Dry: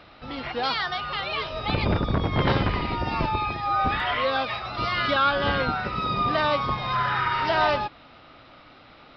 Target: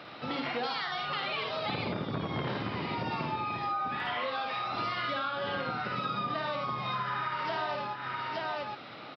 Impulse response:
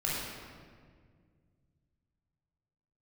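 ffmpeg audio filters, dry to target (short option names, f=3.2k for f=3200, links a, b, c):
-filter_complex "[0:a]highpass=f=120:w=0.5412,highpass=f=120:w=1.3066,asplit=2[a][b];[b]aecho=0:1:55|80|875:0.596|0.473|0.237[c];[a][c]amix=inputs=2:normalize=0,acompressor=threshold=-33dB:ratio=10,volume=2.5dB"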